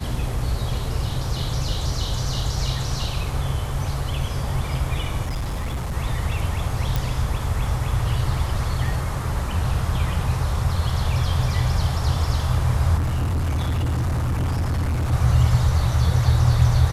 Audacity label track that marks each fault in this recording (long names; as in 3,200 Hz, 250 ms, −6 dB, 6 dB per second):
5.220000	5.970000	clipping −22.5 dBFS
6.960000	6.960000	click
12.970000	15.130000	clipping −19.5 dBFS